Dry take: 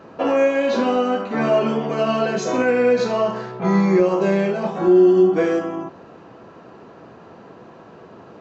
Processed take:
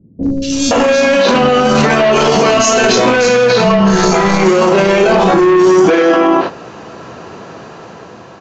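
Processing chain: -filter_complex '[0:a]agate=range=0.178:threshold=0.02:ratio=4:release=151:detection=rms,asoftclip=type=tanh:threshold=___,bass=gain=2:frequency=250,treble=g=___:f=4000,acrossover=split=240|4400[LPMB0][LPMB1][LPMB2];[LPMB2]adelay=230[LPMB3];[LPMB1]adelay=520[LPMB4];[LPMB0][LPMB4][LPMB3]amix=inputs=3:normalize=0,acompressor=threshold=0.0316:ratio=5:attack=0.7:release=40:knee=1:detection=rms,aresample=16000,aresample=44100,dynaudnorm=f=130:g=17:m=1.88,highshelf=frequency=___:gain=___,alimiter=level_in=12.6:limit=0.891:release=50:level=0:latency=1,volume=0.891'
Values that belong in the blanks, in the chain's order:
0.15, 5, 2400, 10.5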